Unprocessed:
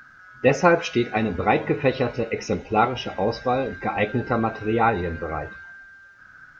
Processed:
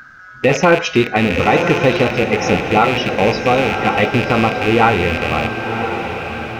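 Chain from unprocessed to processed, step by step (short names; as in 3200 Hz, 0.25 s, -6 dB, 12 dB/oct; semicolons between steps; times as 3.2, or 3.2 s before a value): rattling part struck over -35 dBFS, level -17 dBFS; diffused feedback echo 1.04 s, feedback 50%, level -8 dB; maximiser +9 dB; gain -1 dB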